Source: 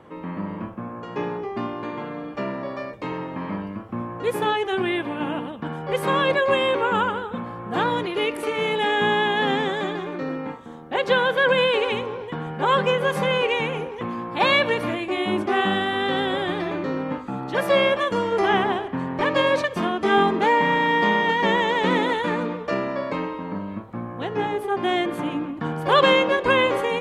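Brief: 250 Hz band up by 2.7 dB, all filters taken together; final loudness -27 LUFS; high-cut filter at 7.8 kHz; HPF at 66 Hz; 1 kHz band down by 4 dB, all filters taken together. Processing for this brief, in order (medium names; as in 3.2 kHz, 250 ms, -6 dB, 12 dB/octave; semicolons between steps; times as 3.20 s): high-pass 66 Hz; low-pass 7.8 kHz; peaking EQ 250 Hz +4 dB; peaking EQ 1 kHz -5 dB; trim -3.5 dB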